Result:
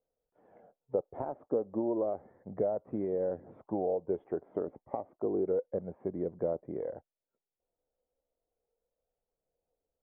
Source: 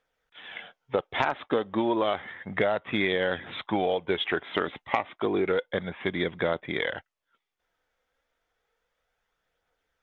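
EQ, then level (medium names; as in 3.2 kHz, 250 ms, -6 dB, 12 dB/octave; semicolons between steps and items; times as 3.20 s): four-pole ladder low-pass 710 Hz, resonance 35%; 0.0 dB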